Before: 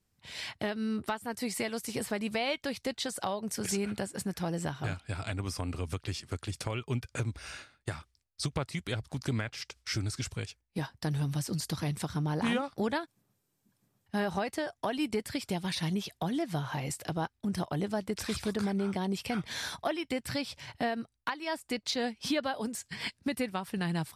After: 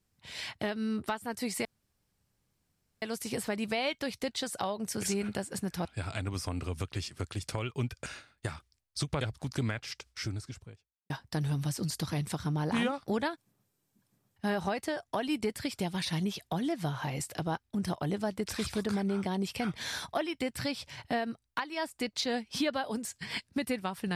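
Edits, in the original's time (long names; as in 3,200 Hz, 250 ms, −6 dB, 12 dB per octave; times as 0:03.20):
0:01.65: splice in room tone 1.37 s
0:04.48–0:04.97: remove
0:07.18–0:07.49: remove
0:08.64–0:08.91: remove
0:09.58–0:10.80: fade out and dull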